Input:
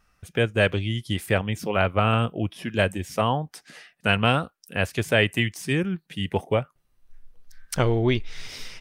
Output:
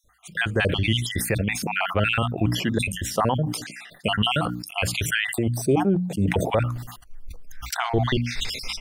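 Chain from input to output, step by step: random holes in the spectrogram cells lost 49%; hum notches 60/120/180/240/300 Hz; peak limiter -19 dBFS, peak gain reduction 11.5 dB; 5.38–6.28 s: FFT filter 240 Hz 0 dB, 670 Hz +15 dB, 1.9 kHz -22 dB, 7.3 kHz -7 dB; decay stretcher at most 61 dB/s; trim +7 dB

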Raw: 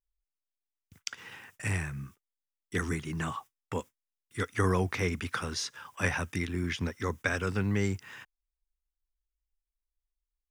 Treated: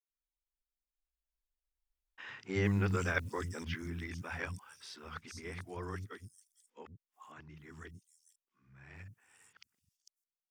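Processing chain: reverse the whole clip; Doppler pass-by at 2.44 s, 15 m/s, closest 10 m; three bands offset in time mids, lows, highs 100/450 ms, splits 220/5500 Hz

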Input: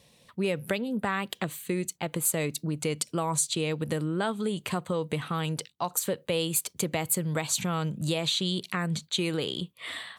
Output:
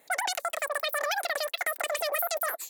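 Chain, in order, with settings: wide varispeed 3.78×

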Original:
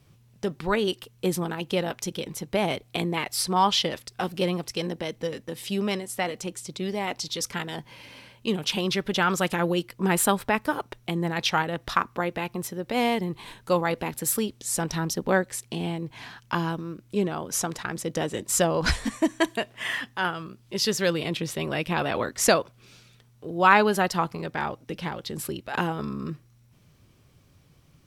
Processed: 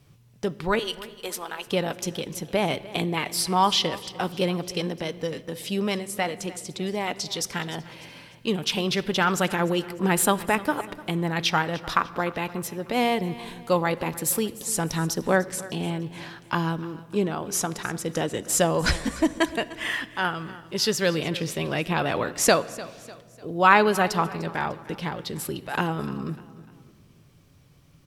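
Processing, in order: 0.79–1.67 s: high-pass 710 Hz 12 dB/octave; feedback delay 299 ms, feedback 42%, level -18.5 dB; simulated room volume 3400 m³, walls mixed, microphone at 0.34 m; trim +1 dB

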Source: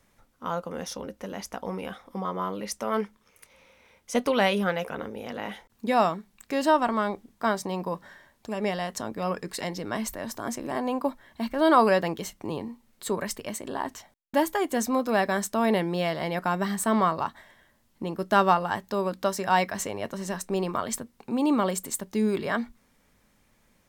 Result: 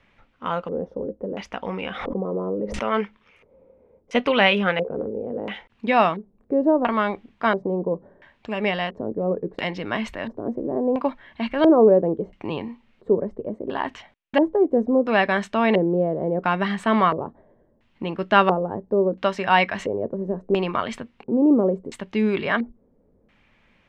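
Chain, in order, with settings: LFO low-pass square 0.73 Hz 460–2700 Hz; 1.78–2.89 s: swell ahead of each attack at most 43 dB/s; trim +3.5 dB

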